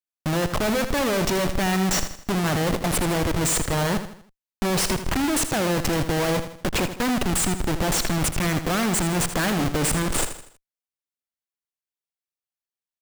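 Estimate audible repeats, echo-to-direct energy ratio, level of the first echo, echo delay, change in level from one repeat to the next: 4, -9.5 dB, -10.5 dB, 80 ms, -7.5 dB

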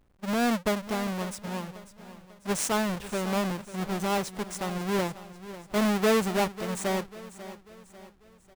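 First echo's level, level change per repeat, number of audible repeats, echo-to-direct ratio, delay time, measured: -15.0 dB, -7.0 dB, 3, -14.0 dB, 544 ms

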